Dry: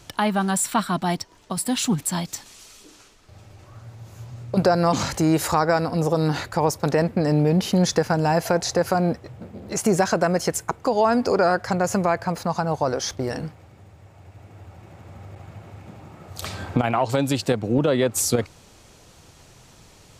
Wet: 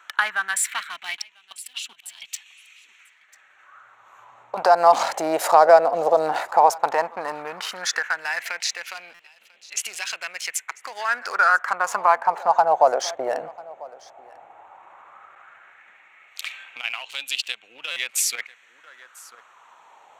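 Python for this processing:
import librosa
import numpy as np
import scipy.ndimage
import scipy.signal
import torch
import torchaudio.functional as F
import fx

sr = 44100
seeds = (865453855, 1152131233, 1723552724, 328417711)

y = fx.wiener(x, sr, points=9)
y = fx.level_steps(y, sr, step_db=19, at=(1.52, 2.22))
y = y + 10.0 ** (-22.0 / 20.0) * np.pad(y, (int(994 * sr / 1000.0), 0))[:len(y)]
y = fx.filter_lfo_highpass(y, sr, shape='sine', hz=0.13, low_hz=640.0, high_hz=2800.0, q=3.4)
y = fx.buffer_glitch(y, sr, at_s=(9.14, 17.91), block=256, repeats=8)
y = y * 10.0 ** (1.0 / 20.0)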